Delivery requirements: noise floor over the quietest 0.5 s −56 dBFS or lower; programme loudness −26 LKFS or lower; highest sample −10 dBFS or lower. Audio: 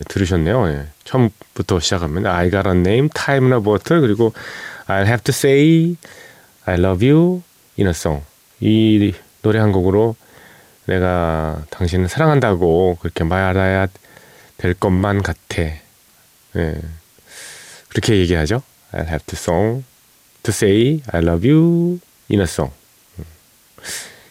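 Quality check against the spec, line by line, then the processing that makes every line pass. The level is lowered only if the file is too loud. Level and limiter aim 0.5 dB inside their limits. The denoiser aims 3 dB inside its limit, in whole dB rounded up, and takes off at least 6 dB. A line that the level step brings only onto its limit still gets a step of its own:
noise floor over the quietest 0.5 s −52 dBFS: out of spec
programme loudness −17.0 LKFS: out of spec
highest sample −2.5 dBFS: out of spec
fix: level −9.5 dB

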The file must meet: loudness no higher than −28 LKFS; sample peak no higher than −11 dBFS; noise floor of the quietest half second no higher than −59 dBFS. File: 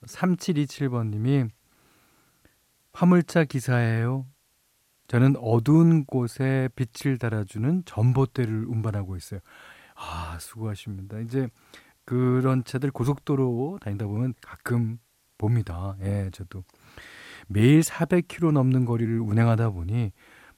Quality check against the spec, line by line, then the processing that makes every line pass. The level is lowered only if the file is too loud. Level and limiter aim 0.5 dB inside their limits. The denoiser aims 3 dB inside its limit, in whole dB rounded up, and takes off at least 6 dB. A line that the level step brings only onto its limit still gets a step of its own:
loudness −25.0 LKFS: out of spec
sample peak −8.0 dBFS: out of spec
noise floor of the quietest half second −67 dBFS: in spec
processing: level −3.5 dB

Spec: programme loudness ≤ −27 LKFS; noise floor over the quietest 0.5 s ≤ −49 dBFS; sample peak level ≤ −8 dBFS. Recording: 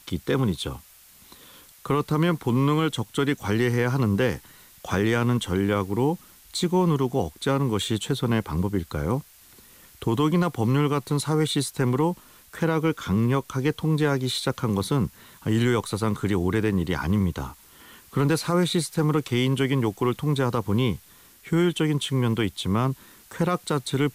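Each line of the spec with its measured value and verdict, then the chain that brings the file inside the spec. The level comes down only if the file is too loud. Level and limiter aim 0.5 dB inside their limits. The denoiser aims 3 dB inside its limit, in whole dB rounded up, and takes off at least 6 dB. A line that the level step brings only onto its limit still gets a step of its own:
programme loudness −24.5 LKFS: out of spec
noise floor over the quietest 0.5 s −52 dBFS: in spec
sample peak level −11.5 dBFS: in spec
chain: level −3 dB

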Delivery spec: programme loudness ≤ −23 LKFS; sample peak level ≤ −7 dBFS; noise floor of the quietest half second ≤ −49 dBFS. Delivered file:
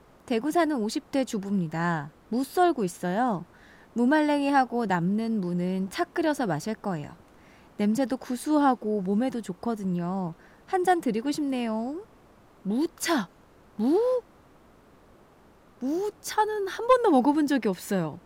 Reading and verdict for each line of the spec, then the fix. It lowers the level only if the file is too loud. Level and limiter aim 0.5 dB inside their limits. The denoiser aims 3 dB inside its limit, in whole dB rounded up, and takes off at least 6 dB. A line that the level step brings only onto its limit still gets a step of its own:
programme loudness −27.0 LKFS: in spec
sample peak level −10.0 dBFS: in spec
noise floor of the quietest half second −56 dBFS: in spec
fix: no processing needed

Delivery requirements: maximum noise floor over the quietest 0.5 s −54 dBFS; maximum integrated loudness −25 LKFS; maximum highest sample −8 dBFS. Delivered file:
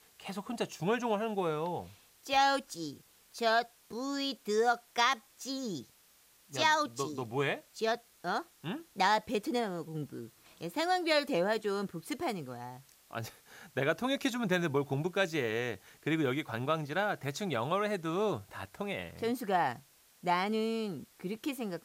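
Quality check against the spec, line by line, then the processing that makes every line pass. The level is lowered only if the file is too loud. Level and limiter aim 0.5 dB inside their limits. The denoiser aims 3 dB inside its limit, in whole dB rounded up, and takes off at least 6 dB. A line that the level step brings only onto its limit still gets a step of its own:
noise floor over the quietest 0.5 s −64 dBFS: in spec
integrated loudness −33.5 LKFS: in spec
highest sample −14.0 dBFS: in spec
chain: no processing needed

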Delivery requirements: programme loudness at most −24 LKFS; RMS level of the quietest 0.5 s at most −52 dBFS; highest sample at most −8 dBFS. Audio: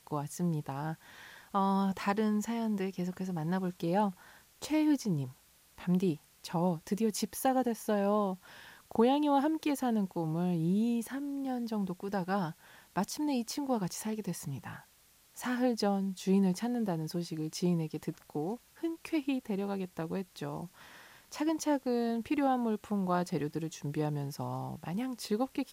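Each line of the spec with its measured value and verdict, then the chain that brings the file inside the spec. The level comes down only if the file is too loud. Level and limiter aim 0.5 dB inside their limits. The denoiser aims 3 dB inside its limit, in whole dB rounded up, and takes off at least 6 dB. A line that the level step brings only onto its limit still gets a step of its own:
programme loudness −33.5 LKFS: in spec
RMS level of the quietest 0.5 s −64 dBFS: in spec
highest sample −15.0 dBFS: in spec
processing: no processing needed

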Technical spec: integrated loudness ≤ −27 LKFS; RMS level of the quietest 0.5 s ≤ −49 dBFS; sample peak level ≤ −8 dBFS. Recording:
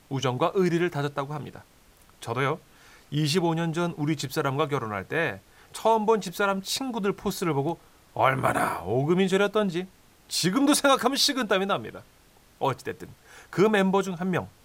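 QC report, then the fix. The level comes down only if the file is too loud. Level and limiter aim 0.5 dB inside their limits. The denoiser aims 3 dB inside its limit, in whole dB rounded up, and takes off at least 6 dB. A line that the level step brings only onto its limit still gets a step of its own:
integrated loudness −25.5 LKFS: out of spec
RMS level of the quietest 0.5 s −57 dBFS: in spec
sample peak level −6.5 dBFS: out of spec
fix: level −2 dB

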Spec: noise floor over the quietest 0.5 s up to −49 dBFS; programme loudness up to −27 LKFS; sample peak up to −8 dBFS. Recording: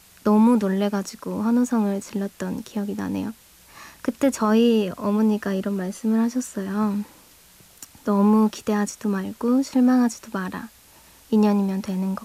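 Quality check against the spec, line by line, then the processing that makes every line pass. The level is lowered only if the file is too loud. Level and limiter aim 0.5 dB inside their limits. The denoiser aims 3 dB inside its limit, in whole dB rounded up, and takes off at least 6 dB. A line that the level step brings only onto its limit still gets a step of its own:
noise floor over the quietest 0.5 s −52 dBFS: in spec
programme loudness −22.5 LKFS: out of spec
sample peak −8.5 dBFS: in spec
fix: level −5 dB

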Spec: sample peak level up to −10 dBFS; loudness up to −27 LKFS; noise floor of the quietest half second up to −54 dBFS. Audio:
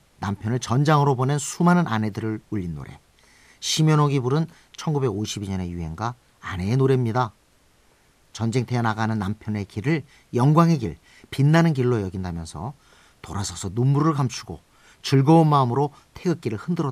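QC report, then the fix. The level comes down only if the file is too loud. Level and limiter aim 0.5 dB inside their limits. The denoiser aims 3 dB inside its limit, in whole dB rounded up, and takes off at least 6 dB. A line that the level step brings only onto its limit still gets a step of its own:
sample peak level −5.0 dBFS: out of spec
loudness −22.5 LKFS: out of spec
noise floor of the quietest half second −59 dBFS: in spec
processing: level −5 dB
brickwall limiter −10.5 dBFS

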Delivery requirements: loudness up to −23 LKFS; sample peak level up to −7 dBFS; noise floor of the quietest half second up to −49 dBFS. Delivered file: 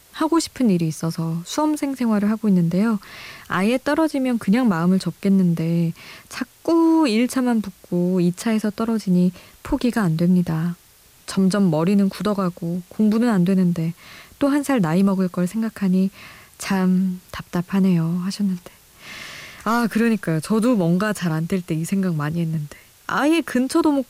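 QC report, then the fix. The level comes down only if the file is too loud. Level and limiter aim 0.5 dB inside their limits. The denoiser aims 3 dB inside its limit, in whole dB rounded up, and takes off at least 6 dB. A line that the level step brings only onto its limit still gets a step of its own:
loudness −20.5 LKFS: out of spec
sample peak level −8.5 dBFS: in spec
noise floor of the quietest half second −52 dBFS: in spec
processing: level −3 dB

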